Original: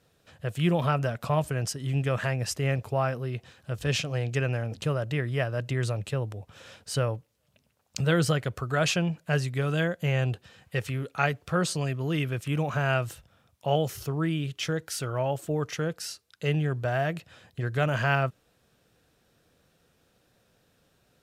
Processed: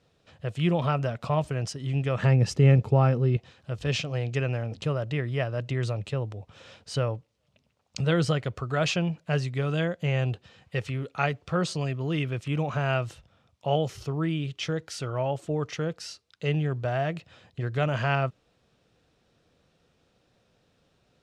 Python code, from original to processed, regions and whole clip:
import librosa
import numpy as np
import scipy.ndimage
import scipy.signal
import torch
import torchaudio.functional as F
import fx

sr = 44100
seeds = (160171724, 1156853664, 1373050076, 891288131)

y = fx.chain(x, sr, fx.peak_eq(hz=190.0, db=14.5, octaves=1.7),
    fx.comb(ms=2.3, depth=0.32), at=(2.19, 3.37))
y = scipy.signal.sosfilt(scipy.signal.butter(2, 5800.0, 'lowpass', fs=sr, output='sos'), y)
y = fx.peak_eq(y, sr, hz=1600.0, db=-4.5, octaves=0.36)